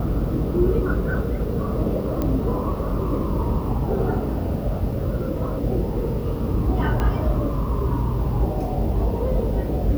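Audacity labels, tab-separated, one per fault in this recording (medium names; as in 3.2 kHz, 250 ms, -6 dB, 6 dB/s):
2.220000	2.220000	pop -12 dBFS
7.000000	7.000000	pop -12 dBFS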